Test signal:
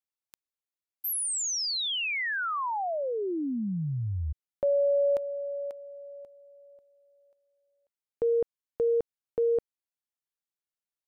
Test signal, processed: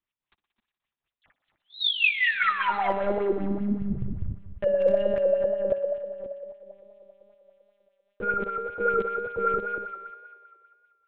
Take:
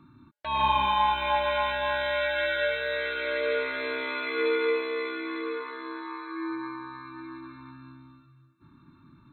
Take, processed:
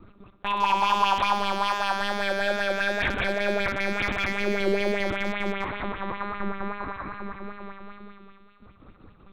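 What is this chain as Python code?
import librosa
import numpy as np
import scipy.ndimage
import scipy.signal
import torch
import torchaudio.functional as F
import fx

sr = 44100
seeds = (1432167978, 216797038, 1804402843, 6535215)

p1 = fx.low_shelf(x, sr, hz=77.0, db=-6.5)
p2 = fx.chopper(p1, sr, hz=5.0, depth_pct=60, duty_pct=60)
p3 = fx.over_compress(p2, sr, threshold_db=-29.0, ratio=-0.5)
p4 = p2 + (p3 * librosa.db_to_amplitude(-1.5))
p5 = 10.0 ** (-22.5 / 20.0) * np.tanh(p4 / 10.0 ** (-22.5 / 20.0))
p6 = fx.echo_feedback(p5, sr, ms=256, feedback_pct=17, wet_db=-9.5)
p7 = fx.lpc_monotone(p6, sr, seeds[0], pitch_hz=200.0, order=8)
p8 = fx.echo_thinned(p7, sr, ms=60, feedback_pct=83, hz=150.0, wet_db=-15)
p9 = np.clip(p8, -10.0 ** (-18.0 / 20.0), 10.0 ** (-18.0 / 20.0))
p10 = fx.wow_flutter(p9, sr, seeds[1], rate_hz=2.1, depth_cents=29.0)
y = fx.bell_lfo(p10, sr, hz=5.1, low_hz=230.0, high_hz=3100.0, db=9)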